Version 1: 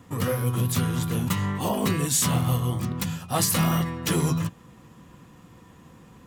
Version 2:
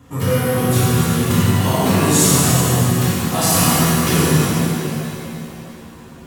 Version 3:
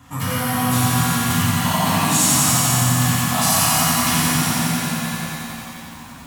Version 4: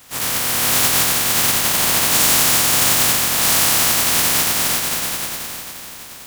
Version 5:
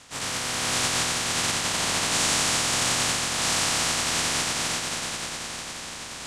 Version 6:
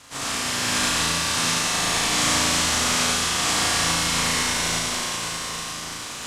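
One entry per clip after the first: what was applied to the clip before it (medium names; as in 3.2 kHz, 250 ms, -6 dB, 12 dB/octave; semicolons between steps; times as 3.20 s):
pitch-shifted reverb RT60 2.7 s, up +7 st, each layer -8 dB, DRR -9 dB
FFT filter 270 Hz 0 dB, 390 Hz -15 dB, 750 Hz +6 dB; compression 1.5:1, threshold -24 dBFS, peak gain reduction 6.5 dB; bit-crushed delay 89 ms, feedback 80%, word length 7-bit, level -5 dB; trim -2 dB
spectral contrast reduction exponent 0.18; trim +2 dB
low-pass 8.6 kHz 24 dB/octave; reverse; upward compressor, threshold -22 dBFS; reverse; trim -6 dB
CVSD coder 64 kbps; peaking EQ 1.1 kHz +2.5 dB 0.33 oct; on a send: flutter echo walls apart 6.2 m, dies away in 0.86 s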